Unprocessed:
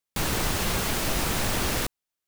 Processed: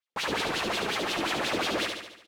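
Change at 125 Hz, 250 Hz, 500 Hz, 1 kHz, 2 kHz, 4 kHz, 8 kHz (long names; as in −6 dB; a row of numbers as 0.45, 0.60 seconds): −13.0, −2.5, +1.0, +0.5, +1.0, +0.5, −9.5 decibels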